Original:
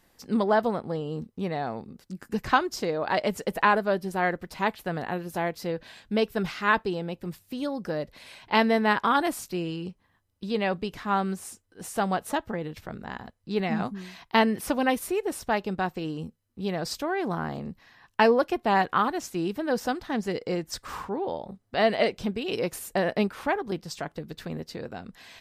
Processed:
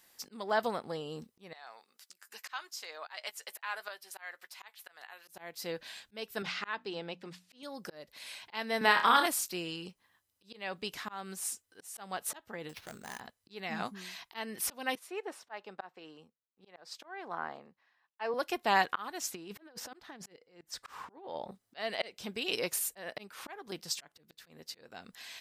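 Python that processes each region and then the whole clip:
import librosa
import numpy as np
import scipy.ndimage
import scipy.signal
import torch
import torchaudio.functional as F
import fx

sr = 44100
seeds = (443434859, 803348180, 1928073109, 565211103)

y = fx.chain(x, sr, fx.highpass(hz=970.0, slope=12),
    fx.tremolo_shape(shape='saw_up', hz=1.7, depth_pct=70),
    fx.doubler(ms=13.0, db=-14.0), at=(1.53, 5.28))
y = fx.chain(y, sr, fx.bandpass_edges(low_hz=130.0, high_hz=4700.0),
    fx.hum_notches(base_hz=60, count=5), at=(6.42, 7.63))
y = fx.chain(y, sr, fx.highpass(hz=130.0, slope=12),
    fx.room_flutter(wall_m=5.2, rt60_s=0.31),
    fx.band_squash(depth_pct=70), at=(8.81, 9.26))
y = fx.chain(y, sr, fx.sample_hold(seeds[0], rate_hz=8000.0, jitter_pct=0),
    fx.overload_stage(gain_db=32.0),
    fx.high_shelf(hz=6800.0, db=-8.5), at=(12.69, 13.2))
y = fx.chain(y, sr, fx.bandpass_q(hz=900.0, q=0.65),
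    fx.band_widen(depth_pct=70), at=(14.95, 18.34))
y = fx.chain(y, sr, fx.high_shelf(hz=4400.0, db=-11.0),
    fx.over_compress(threshold_db=-32.0, ratio=-0.5), at=(19.31, 21.52))
y = fx.high_shelf(y, sr, hz=8500.0, db=-4.5)
y = fx.auto_swell(y, sr, attack_ms=352.0)
y = fx.tilt_eq(y, sr, slope=3.5)
y = y * 10.0 ** (-3.5 / 20.0)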